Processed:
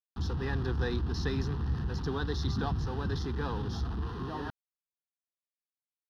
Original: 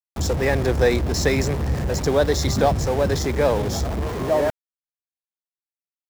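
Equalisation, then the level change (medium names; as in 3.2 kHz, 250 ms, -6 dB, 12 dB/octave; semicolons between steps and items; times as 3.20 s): distance through air 84 m; static phaser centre 2.2 kHz, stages 6; -8.0 dB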